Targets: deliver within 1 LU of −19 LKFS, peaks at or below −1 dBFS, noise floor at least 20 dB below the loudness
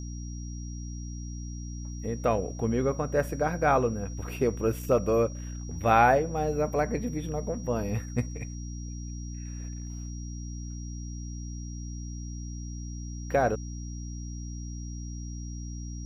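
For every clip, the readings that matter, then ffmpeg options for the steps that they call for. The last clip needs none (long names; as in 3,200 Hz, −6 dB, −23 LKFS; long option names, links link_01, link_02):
mains hum 60 Hz; hum harmonics up to 300 Hz; level of the hum −35 dBFS; interfering tone 5,700 Hz; level of the tone −48 dBFS; integrated loudness −31.0 LKFS; sample peak −8.0 dBFS; target loudness −19.0 LKFS
→ -af "bandreject=frequency=60:width_type=h:width=4,bandreject=frequency=120:width_type=h:width=4,bandreject=frequency=180:width_type=h:width=4,bandreject=frequency=240:width_type=h:width=4,bandreject=frequency=300:width_type=h:width=4"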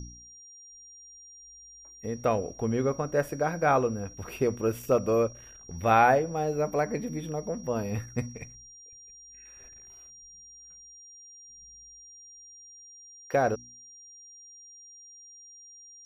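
mains hum none found; interfering tone 5,700 Hz; level of the tone −48 dBFS
→ -af "bandreject=frequency=5700:width=30"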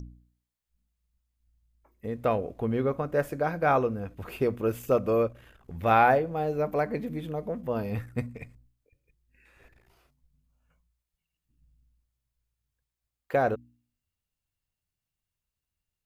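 interfering tone none found; integrated loudness −28.0 LKFS; sample peak −8.5 dBFS; target loudness −19.0 LKFS
→ -af "volume=9dB,alimiter=limit=-1dB:level=0:latency=1"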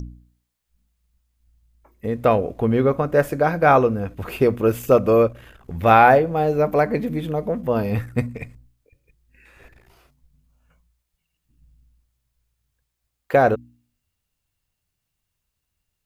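integrated loudness −19.0 LKFS; sample peak −1.0 dBFS; background noise floor −79 dBFS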